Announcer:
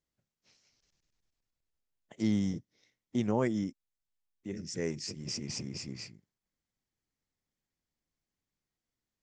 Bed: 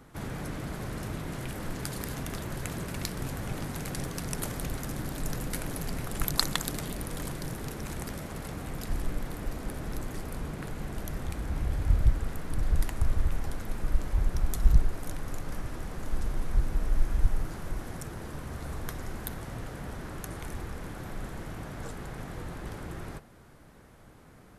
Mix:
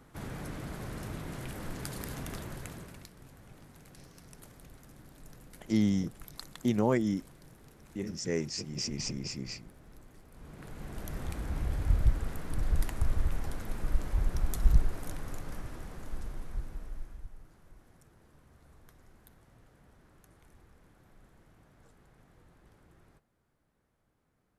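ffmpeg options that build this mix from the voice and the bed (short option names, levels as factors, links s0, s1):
-filter_complex "[0:a]adelay=3500,volume=1.33[s0];[1:a]volume=4.22,afade=t=out:st=2.34:d=0.75:silence=0.177828,afade=t=in:st=10.32:d=0.91:silence=0.149624,afade=t=out:st=14.97:d=2.3:silence=0.105925[s1];[s0][s1]amix=inputs=2:normalize=0"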